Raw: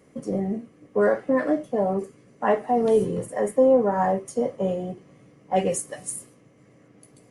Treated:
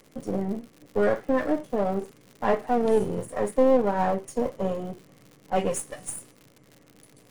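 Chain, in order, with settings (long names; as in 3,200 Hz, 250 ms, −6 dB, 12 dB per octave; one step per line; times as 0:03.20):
gain on one half-wave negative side −7 dB
surface crackle 130 per second −39 dBFS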